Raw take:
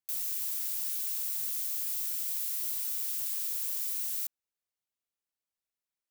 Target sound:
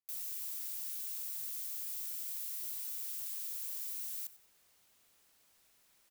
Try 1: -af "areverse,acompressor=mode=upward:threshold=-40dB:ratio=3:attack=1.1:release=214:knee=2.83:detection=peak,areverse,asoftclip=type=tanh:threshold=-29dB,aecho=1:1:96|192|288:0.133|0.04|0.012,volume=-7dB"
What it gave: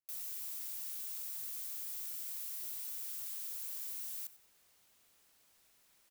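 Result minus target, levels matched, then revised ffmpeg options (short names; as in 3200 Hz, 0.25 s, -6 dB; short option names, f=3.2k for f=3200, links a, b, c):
soft clip: distortion +12 dB
-af "areverse,acompressor=mode=upward:threshold=-40dB:ratio=3:attack=1.1:release=214:knee=2.83:detection=peak,areverse,asoftclip=type=tanh:threshold=-21dB,aecho=1:1:96|192|288:0.133|0.04|0.012,volume=-7dB"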